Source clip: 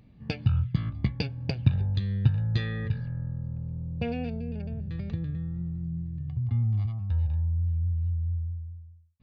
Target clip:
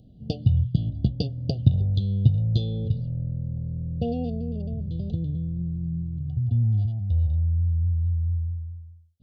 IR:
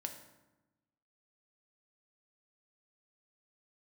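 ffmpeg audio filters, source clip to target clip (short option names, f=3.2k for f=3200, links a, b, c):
-af "asuperstop=centerf=1500:order=20:qfactor=0.68,highshelf=f=4.5k:g=-5.5,volume=4dB"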